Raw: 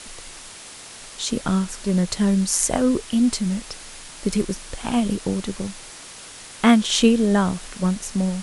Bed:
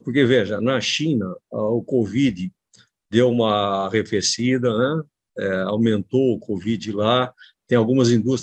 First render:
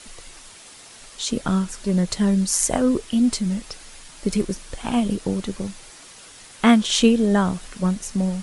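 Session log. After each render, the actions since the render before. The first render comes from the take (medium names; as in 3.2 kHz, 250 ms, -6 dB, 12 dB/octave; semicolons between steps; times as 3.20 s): noise reduction 6 dB, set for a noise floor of -41 dBFS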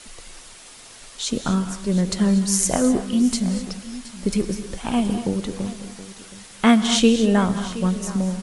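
delay 722 ms -16.5 dB; gated-style reverb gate 270 ms rising, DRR 9.5 dB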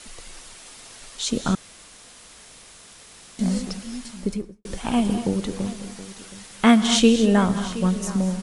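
1.55–3.39 s: room tone; 4.07–4.65 s: studio fade out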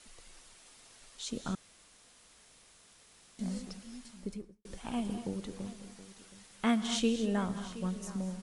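trim -14 dB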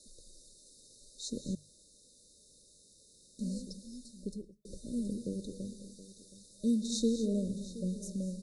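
hum notches 50/100/150 Hz; FFT band-reject 620–3600 Hz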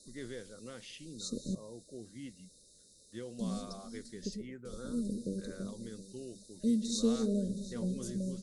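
add bed -28 dB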